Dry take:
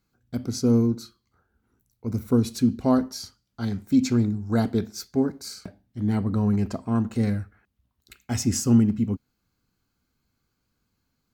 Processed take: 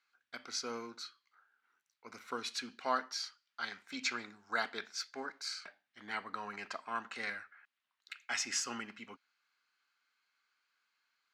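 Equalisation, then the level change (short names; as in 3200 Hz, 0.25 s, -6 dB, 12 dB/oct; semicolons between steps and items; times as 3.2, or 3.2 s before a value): ladder band-pass 2200 Hz, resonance 20%; +15.0 dB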